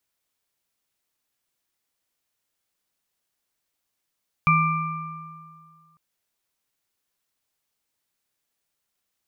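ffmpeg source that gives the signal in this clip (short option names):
-f lavfi -i "aevalsrc='0.106*pow(10,-3*t/2.05)*sin(2*PI*161*t)+0.158*pow(10,-3*t/2.08)*sin(2*PI*1190*t)+0.106*pow(10,-3*t/1.23)*sin(2*PI*2350*t)':d=1.5:s=44100"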